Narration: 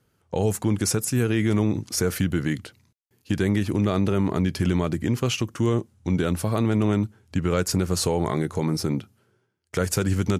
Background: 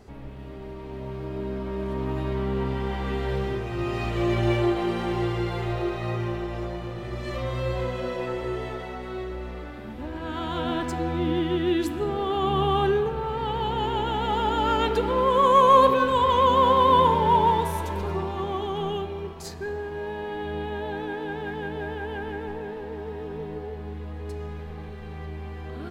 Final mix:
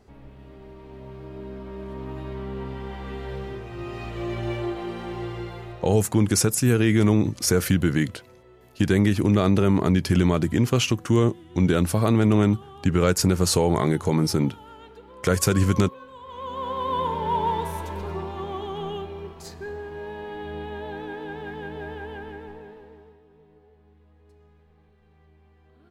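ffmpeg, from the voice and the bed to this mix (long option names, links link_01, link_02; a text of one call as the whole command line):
ffmpeg -i stem1.wav -i stem2.wav -filter_complex "[0:a]adelay=5500,volume=3dB[link_01];[1:a]volume=13.5dB,afade=type=out:start_time=5.4:duration=0.66:silence=0.149624,afade=type=in:start_time=16.24:duration=1.43:silence=0.105925,afade=type=out:start_time=21.97:duration=1.24:silence=0.11885[link_02];[link_01][link_02]amix=inputs=2:normalize=0" out.wav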